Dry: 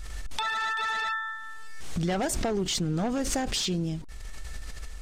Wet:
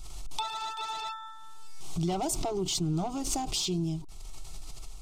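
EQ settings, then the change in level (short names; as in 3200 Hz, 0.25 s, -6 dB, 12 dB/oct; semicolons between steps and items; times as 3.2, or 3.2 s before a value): fixed phaser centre 340 Hz, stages 8; 0.0 dB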